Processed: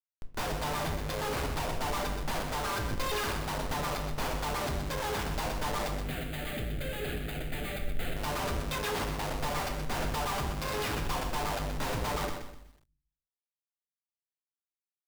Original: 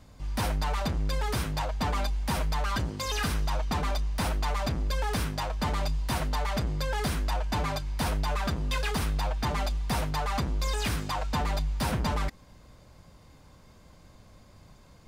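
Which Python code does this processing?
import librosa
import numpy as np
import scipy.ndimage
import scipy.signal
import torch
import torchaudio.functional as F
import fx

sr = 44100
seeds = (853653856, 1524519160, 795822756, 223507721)

y = scipy.signal.sosfilt(scipy.signal.butter(6, 5900.0, 'lowpass', fs=sr, output='sos'), x)
y = fx.bass_treble(y, sr, bass_db=-13, treble_db=-1)
y = fx.echo_feedback(y, sr, ms=139, feedback_pct=48, wet_db=-21)
y = fx.schmitt(y, sr, flips_db=-36.0)
y = fx.fixed_phaser(y, sr, hz=2400.0, stages=4, at=(6.02, 8.16))
y = fx.room_shoebox(y, sr, seeds[0], volume_m3=65.0, walls='mixed', distance_m=0.33)
y = fx.echo_crushed(y, sr, ms=125, feedback_pct=35, bits=10, wet_db=-7.5)
y = y * 10.0 ** (1.5 / 20.0)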